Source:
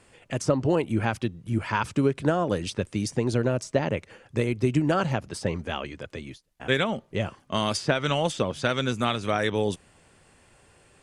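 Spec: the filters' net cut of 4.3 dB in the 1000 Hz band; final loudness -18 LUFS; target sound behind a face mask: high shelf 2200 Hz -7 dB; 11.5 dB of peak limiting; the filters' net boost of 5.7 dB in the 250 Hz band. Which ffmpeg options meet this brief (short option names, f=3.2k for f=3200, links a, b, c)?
-af "equalizer=f=250:t=o:g=7.5,equalizer=f=1k:t=o:g=-5,alimiter=limit=-17.5dB:level=0:latency=1,highshelf=f=2.2k:g=-7,volume=11.5dB"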